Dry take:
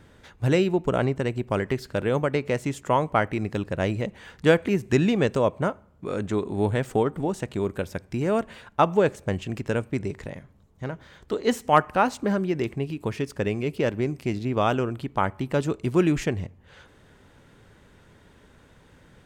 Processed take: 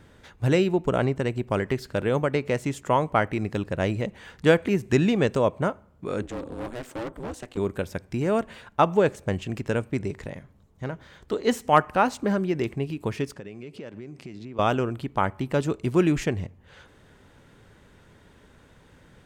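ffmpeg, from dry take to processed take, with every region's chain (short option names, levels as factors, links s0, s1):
-filter_complex "[0:a]asettb=1/sr,asplit=3[s0][s1][s2];[s0]atrim=end=6.224[s3];[s1]atrim=start=6.22:end=7.57,asetpts=PTS-STARTPTS,afade=t=in:d=0.004:c=qsin,afade=t=out:st=1.346:d=0.004:c=qsin,highpass=200,aeval=exprs='val(0)*sin(2*PI*120*n/s)':c=same,volume=28.2,asoftclip=hard,volume=0.0355[s4];[s2]atrim=start=7.566[s5];[s3][s4]acrossfade=d=0.004:c1=hsin:c2=qsin[s6];[s6][s5]acrossfade=d=0.004:c1=qsin:c2=hsin,asettb=1/sr,asplit=3[s7][s8][s9];[s7]atrim=end=13.344[s10];[s8]atrim=start=13.34:end=14.59,asetpts=PTS-STARTPTS,afade=t=in:d=0.004:c=qsin,afade=t=out:st=1.246:d=0.004:c=qsin,acompressor=threshold=0.02:ratio=16:attack=3.2:release=140:knee=1:detection=peak,highpass=120,lowpass=7800[s11];[s9]atrim=start=14.586[s12];[s10][s11]acrossfade=d=0.004:c1=hsin:c2=qsin[s13];[s13][s12]acrossfade=d=0.004:c1=qsin:c2=hsin"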